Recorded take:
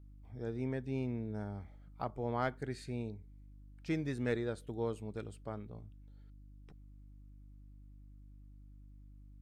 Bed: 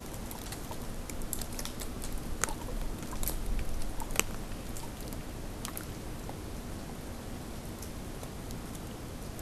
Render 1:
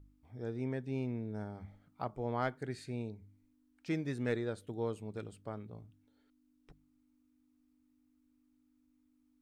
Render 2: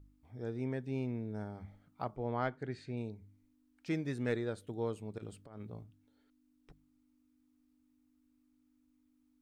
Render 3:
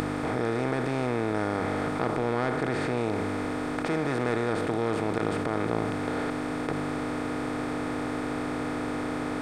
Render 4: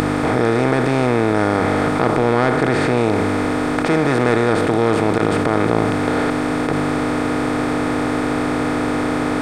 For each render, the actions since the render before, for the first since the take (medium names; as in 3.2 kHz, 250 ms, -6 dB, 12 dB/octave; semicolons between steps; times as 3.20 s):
de-hum 50 Hz, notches 4
2.16–2.97 s: distance through air 110 m; 5.18–5.84 s: compressor with a negative ratio -46 dBFS, ratio -0.5
spectral levelling over time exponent 0.2; in parallel at -2 dB: compressor with a negative ratio -35 dBFS
trim +11.5 dB; peak limiter -3 dBFS, peak gain reduction 2.5 dB